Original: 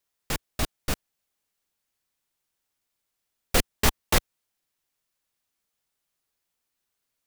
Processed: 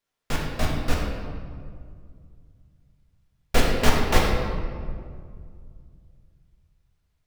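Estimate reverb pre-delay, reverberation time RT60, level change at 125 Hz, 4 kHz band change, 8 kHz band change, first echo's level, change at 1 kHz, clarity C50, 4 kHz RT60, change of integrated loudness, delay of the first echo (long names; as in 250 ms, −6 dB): 3 ms, 2.1 s, +7.0 dB, +0.5 dB, −4.0 dB, no echo audible, +5.0 dB, 1.0 dB, 1.2 s, +1.0 dB, no echo audible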